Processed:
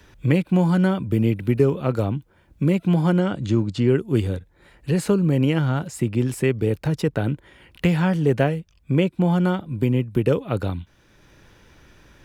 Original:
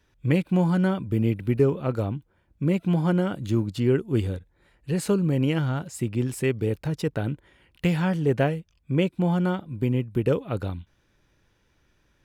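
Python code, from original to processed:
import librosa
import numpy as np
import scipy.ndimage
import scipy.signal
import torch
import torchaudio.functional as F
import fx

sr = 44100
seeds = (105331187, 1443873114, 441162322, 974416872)

y = fx.lowpass(x, sr, hz=8000.0, slope=24, at=(3.19, 3.88))
y = fx.band_squash(y, sr, depth_pct=40)
y = F.gain(torch.from_numpy(y), 3.5).numpy()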